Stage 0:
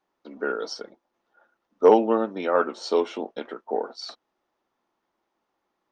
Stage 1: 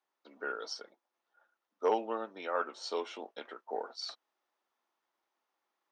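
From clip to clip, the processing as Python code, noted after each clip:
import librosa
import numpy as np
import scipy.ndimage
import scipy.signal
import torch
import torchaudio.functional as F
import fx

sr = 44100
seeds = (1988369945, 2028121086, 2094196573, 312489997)

y = fx.highpass(x, sr, hz=1000.0, slope=6)
y = fx.rider(y, sr, range_db=5, speed_s=2.0)
y = F.gain(torch.from_numpy(y), -7.5).numpy()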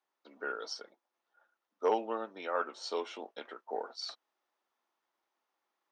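y = x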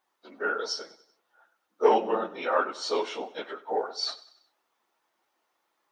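y = fx.phase_scramble(x, sr, seeds[0], window_ms=50)
y = fx.echo_feedback(y, sr, ms=95, feedback_pct=48, wet_db=-18.5)
y = F.gain(torch.from_numpy(y), 8.5).numpy()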